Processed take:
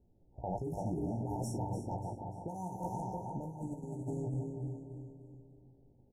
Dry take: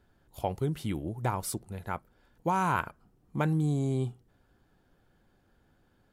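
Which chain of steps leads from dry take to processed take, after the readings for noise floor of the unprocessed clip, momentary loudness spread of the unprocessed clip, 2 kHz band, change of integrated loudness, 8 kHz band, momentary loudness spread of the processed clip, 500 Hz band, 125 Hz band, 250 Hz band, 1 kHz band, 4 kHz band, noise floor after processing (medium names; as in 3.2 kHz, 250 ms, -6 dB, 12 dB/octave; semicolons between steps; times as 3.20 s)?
-68 dBFS, 11 LU, under -40 dB, -7.5 dB, -10.5 dB, 12 LU, -5.0 dB, -6.0 dB, -5.5 dB, -8.5 dB, under -15 dB, -66 dBFS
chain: backward echo that repeats 167 ms, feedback 65%, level -3 dB; level-controlled noise filter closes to 550 Hz, open at -23.5 dBFS; compressor with a negative ratio -30 dBFS, ratio -0.5; feedback delay 294 ms, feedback 43%, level -11 dB; saturation -24 dBFS, distortion -16 dB; doubling 17 ms -7 dB; FFT band-reject 940–5300 Hz; trim -5 dB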